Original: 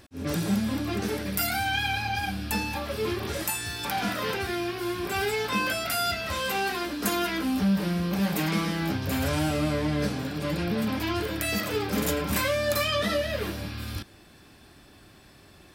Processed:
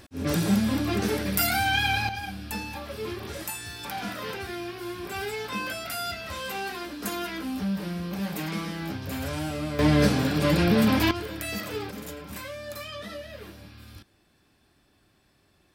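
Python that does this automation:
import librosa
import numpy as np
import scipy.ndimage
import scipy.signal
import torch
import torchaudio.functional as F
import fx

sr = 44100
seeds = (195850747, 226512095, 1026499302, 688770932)

y = fx.gain(x, sr, db=fx.steps((0.0, 3.0), (2.09, -5.0), (9.79, 7.0), (11.11, -4.5), (11.91, -12.0)))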